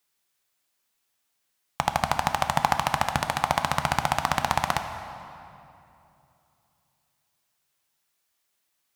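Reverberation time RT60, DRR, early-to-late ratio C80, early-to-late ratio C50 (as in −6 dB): 2.9 s, 6.5 dB, 9.0 dB, 8.0 dB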